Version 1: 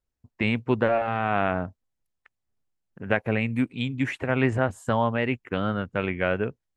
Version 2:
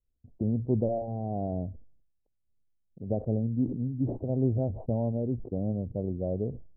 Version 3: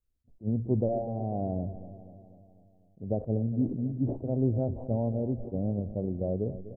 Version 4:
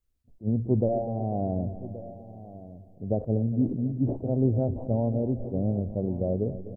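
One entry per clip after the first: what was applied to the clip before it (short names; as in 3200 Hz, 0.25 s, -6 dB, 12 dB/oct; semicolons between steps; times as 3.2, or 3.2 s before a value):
steep low-pass 710 Hz 48 dB/oct; tilt -2.5 dB/oct; sustainer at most 84 dB/s; gain -8.5 dB
feedback echo 0.247 s, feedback 57%, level -14 dB; on a send at -23 dB: reverb RT60 0.45 s, pre-delay 3 ms; on the sum: attack slew limiter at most 360 dB/s
echo 1.126 s -16 dB; gain +3 dB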